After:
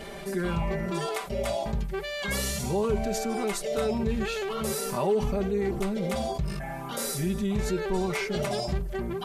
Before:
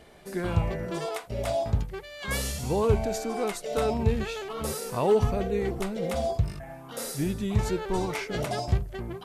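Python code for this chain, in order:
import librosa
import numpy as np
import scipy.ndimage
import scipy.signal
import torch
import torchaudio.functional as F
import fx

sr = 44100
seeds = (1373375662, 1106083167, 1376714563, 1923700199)

y = x + 0.93 * np.pad(x, (int(5.1 * sr / 1000.0), 0))[:len(x)]
y = fx.env_flatten(y, sr, amount_pct=50)
y = y * librosa.db_to_amplitude(-8.5)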